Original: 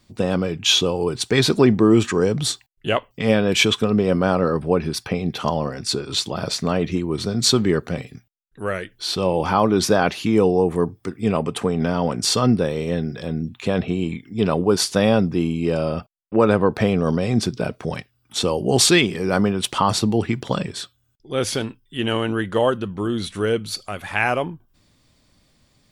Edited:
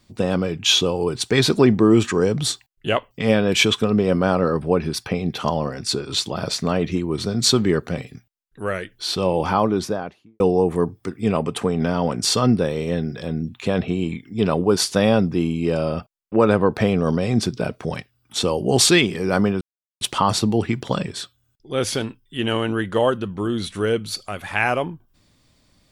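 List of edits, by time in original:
9.39–10.4 studio fade out
19.61 insert silence 0.40 s

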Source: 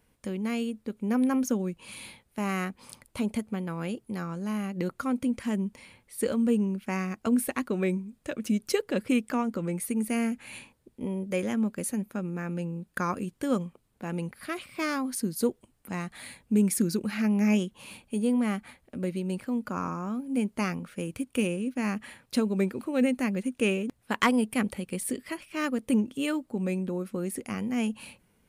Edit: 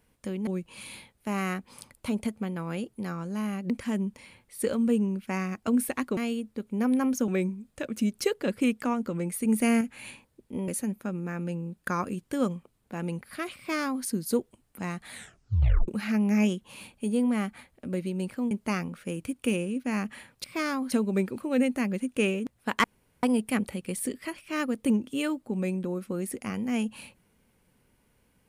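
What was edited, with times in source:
0.47–1.58 move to 7.76
4.81–5.29 cut
9.93–10.29 gain +4.5 dB
11.16–11.78 cut
14.67–15.15 copy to 22.35
16.22 tape stop 0.76 s
19.61–20.42 cut
24.27 insert room tone 0.39 s

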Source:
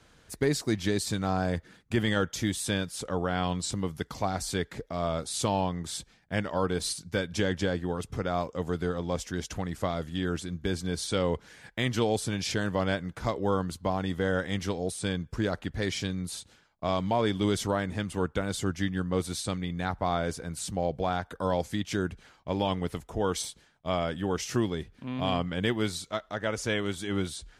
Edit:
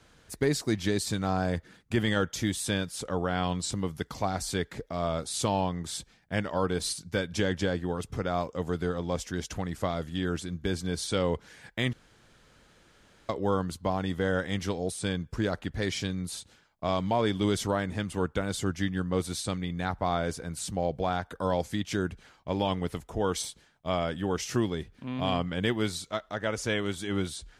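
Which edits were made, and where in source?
11.93–13.29 room tone

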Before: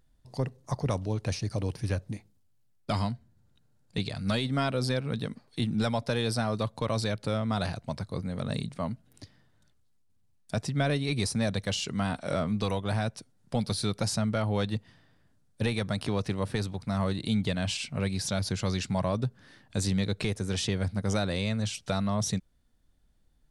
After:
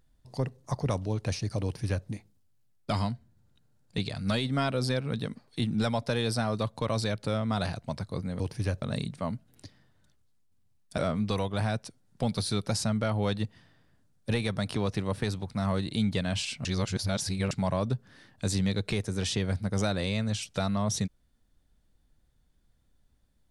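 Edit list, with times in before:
1.64–2.06 copy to 8.4
10.56–12.3 cut
17.97–18.83 reverse

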